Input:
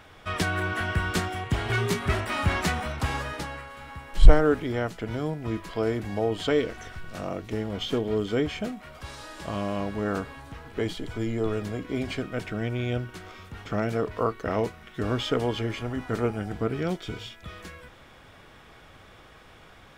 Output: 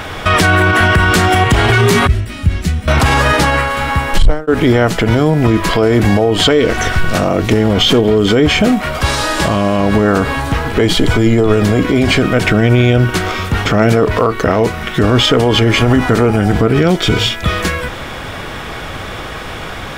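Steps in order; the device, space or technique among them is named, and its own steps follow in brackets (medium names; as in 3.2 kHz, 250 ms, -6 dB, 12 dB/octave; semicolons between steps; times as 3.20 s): 2.07–2.88 s: amplifier tone stack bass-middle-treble 10-0-1; loud club master (compression 2:1, threshold -29 dBFS, peak gain reduction 13 dB; hard clipper -19 dBFS, distortion -20 dB; loudness maximiser +27 dB); trim -1 dB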